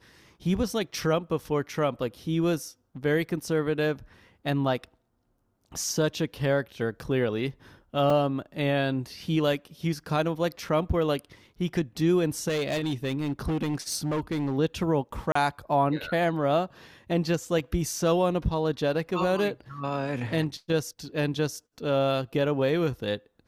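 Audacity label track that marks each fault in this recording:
8.100000	8.100000	drop-out 3.1 ms
12.480000	14.580000	clipping −24 dBFS
15.320000	15.350000	drop-out 34 ms

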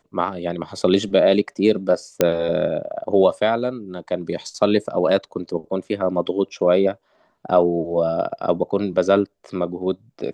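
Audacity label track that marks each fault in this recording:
2.210000	2.210000	click −2 dBFS

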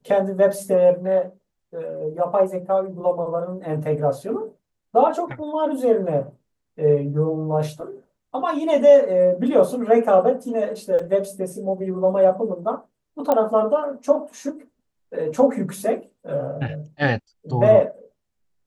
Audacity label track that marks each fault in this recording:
10.990000	10.990000	drop-out 4.2 ms
13.320000	13.320000	click −8 dBFS

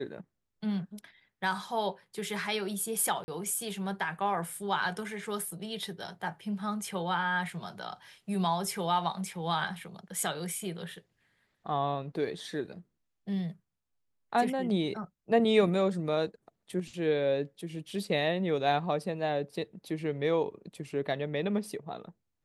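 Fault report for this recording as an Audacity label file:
3.240000	3.280000	drop-out 40 ms

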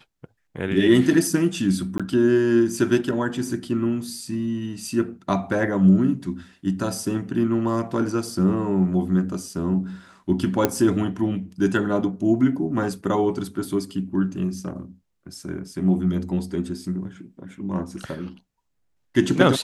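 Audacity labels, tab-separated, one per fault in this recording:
1.980000	2.000000	drop-out 16 ms
10.650000	10.650000	click −4 dBFS

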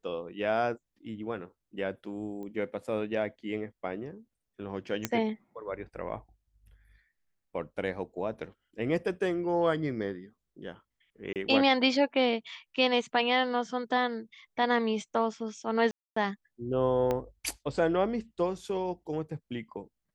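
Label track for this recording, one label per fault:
2.430000	2.430000	click −32 dBFS
5.050000	5.050000	click −12 dBFS
11.330000	11.360000	drop-out 28 ms
15.910000	16.160000	drop-out 254 ms
17.110000	17.110000	click −17 dBFS

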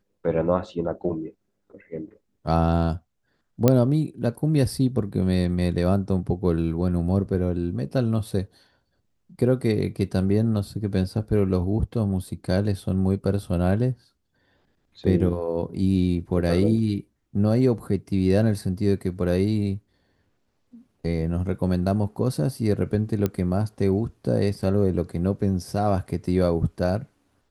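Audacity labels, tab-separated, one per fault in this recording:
3.680000	3.680000	click −4 dBFS
23.260000	23.260000	click −11 dBFS

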